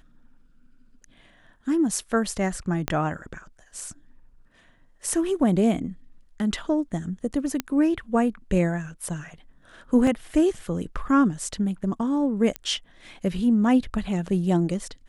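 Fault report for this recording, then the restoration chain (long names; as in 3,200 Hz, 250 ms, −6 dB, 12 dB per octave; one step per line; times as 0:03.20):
0:02.88: click −9 dBFS
0:07.60: click −11 dBFS
0:10.07: drop-out 2.8 ms
0:12.56: click −14 dBFS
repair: click removal
repair the gap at 0:10.07, 2.8 ms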